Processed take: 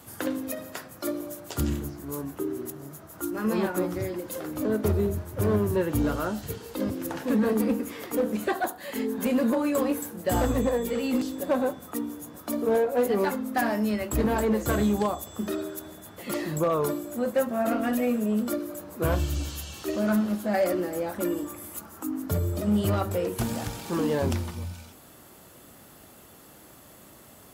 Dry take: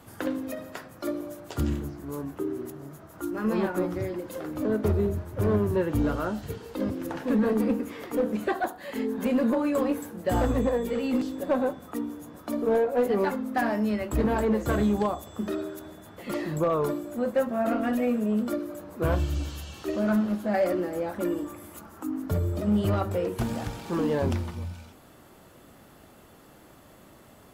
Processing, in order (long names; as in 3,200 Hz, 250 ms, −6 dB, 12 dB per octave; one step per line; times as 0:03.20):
high-pass filter 42 Hz
high-shelf EQ 4,900 Hz +10.5 dB